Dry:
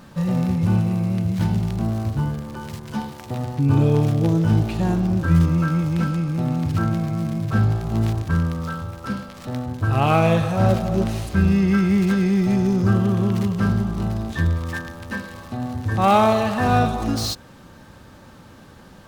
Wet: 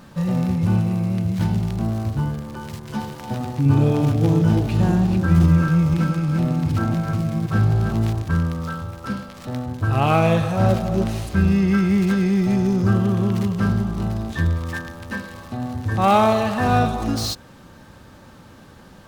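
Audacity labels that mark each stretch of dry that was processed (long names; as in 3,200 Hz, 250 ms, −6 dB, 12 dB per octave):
2.640000	7.950000	delay that plays each chunk backwards 254 ms, level −5 dB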